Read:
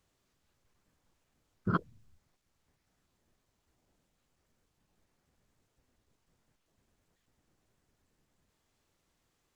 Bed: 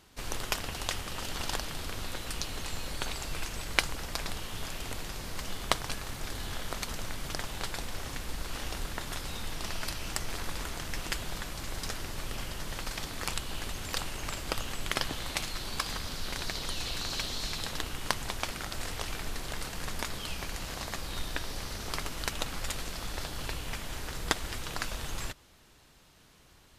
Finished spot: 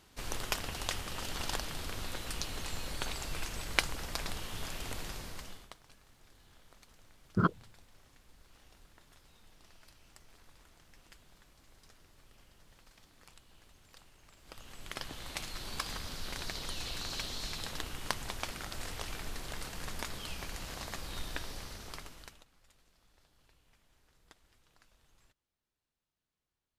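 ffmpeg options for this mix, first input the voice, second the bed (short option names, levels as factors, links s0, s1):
-filter_complex "[0:a]adelay=5700,volume=1.33[s0];[1:a]volume=7.5,afade=t=out:st=5.09:d=0.62:silence=0.0794328,afade=t=in:st=14.37:d=1.35:silence=0.1,afade=t=out:st=21.4:d=1.05:silence=0.0446684[s1];[s0][s1]amix=inputs=2:normalize=0"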